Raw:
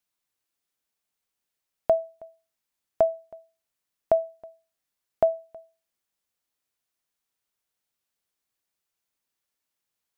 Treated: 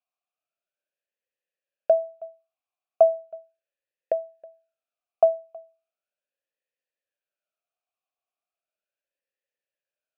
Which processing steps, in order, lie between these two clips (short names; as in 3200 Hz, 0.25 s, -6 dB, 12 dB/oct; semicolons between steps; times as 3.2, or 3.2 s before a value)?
vowel sweep a-e 0.37 Hz; gain +7.5 dB